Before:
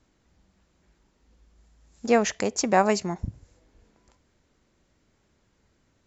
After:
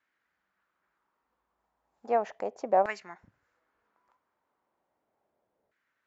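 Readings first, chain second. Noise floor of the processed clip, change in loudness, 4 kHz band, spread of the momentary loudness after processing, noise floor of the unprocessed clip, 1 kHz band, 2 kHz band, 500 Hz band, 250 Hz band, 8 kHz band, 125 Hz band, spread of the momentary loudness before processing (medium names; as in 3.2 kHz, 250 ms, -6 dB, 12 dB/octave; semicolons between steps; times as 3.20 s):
-81 dBFS, -4.5 dB, under -15 dB, 11 LU, -69 dBFS, -3.5 dB, -9.5 dB, -5.0 dB, -16.5 dB, no reading, under -20 dB, 15 LU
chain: treble shelf 6.8 kHz -4 dB; LFO band-pass saw down 0.35 Hz 600–1800 Hz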